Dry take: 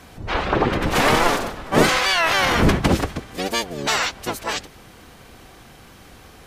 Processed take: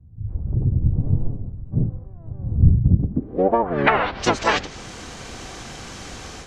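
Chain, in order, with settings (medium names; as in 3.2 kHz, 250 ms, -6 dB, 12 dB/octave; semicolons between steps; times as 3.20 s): low-pass that closes with the level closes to 850 Hz, closed at -17.5 dBFS; level rider gain up to 9.5 dB; low-pass sweep 110 Hz -> 6.8 kHz, 2.88–4.27 s; trim -1 dB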